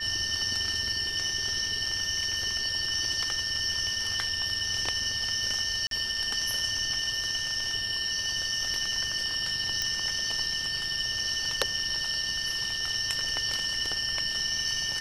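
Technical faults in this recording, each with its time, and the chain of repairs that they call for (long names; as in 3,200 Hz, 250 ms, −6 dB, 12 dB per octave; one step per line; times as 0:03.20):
whistle 1,800 Hz −35 dBFS
0:05.87–0:05.91: drop-out 42 ms
0:09.82: click −14 dBFS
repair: click removal
notch filter 1,800 Hz, Q 30
repair the gap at 0:05.87, 42 ms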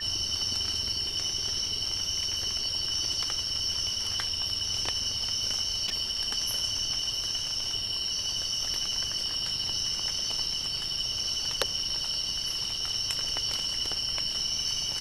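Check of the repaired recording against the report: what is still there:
none of them is left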